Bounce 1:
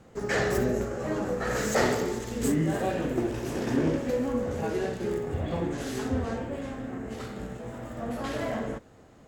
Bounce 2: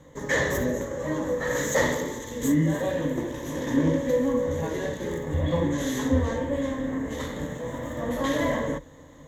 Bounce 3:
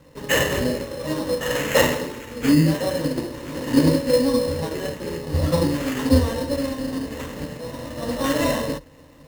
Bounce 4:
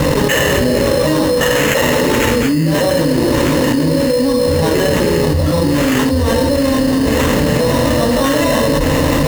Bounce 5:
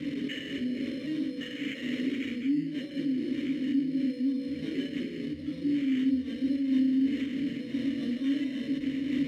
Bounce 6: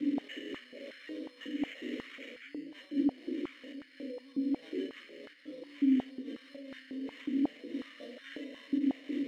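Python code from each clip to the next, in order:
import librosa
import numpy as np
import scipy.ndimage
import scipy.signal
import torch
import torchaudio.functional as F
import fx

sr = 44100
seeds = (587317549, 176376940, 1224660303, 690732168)

y1 = fx.ripple_eq(x, sr, per_octave=1.1, db=13)
y1 = fx.rider(y1, sr, range_db=5, speed_s=2.0)
y2 = fx.sample_hold(y1, sr, seeds[0], rate_hz=4700.0, jitter_pct=0)
y2 = fx.upward_expand(y2, sr, threshold_db=-32.0, expansion=1.5)
y2 = y2 * librosa.db_to_amplitude(7.0)
y3 = fx.env_flatten(y2, sr, amount_pct=100)
y3 = y3 * librosa.db_to_amplitude(-1.5)
y4 = fx.vowel_filter(y3, sr, vowel='i')
y4 = fx.am_noise(y4, sr, seeds[1], hz=5.7, depth_pct=55)
y4 = y4 * librosa.db_to_amplitude(-6.0)
y5 = fx.filter_held_highpass(y4, sr, hz=5.5, low_hz=290.0, high_hz=1500.0)
y5 = y5 * librosa.db_to_amplitude(-8.0)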